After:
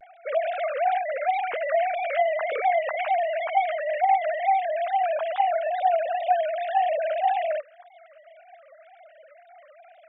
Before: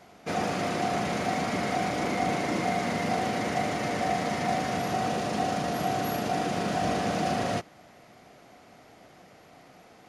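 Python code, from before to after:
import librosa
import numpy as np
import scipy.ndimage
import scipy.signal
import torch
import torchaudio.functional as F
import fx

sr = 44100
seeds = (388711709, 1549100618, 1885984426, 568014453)

y = fx.sine_speech(x, sr)
y = fx.wow_flutter(y, sr, seeds[0], rate_hz=2.1, depth_cents=140.0)
y = y * librosa.db_to_amplitude(4.0)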